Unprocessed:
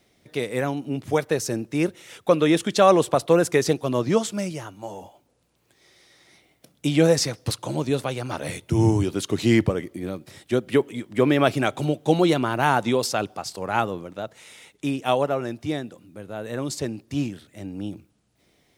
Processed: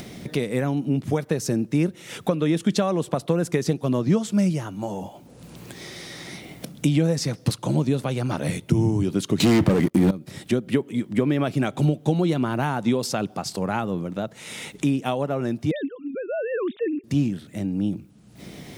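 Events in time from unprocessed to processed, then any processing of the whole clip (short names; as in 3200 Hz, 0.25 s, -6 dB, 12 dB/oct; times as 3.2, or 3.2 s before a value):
9.4–10.11 sample leveller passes 5
15.71–17.04 sine-wave speech
whole clip: compressor 5:1, threshold -23 dBFS; bell 180 Hz +11 dB 1.4 oct; upward compressor, threshold -23 dBFS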